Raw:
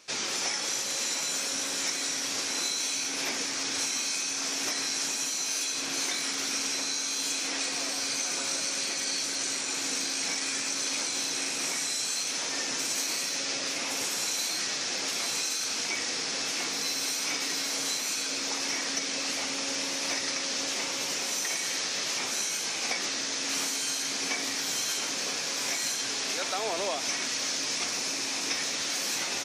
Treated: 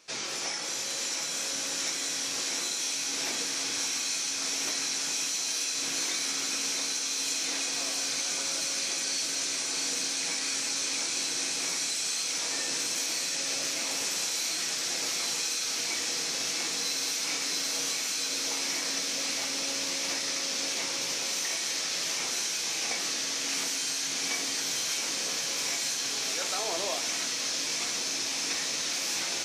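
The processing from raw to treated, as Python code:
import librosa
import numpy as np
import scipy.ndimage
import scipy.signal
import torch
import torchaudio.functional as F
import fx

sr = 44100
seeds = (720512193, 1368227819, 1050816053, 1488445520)

p1 = x + fx.echo_wet_highpass(x, sr, ms=671, feedback_pct=82, hz=2500.0, wet_db=-4.0, dry=0)
p2 = fx.room_shoebox(p1, sr, seeds[0], volume_m3=190.0, walls='furnished', distance_m=0.7)
y = p2 * librosa.db_to_amplitude(-3.5)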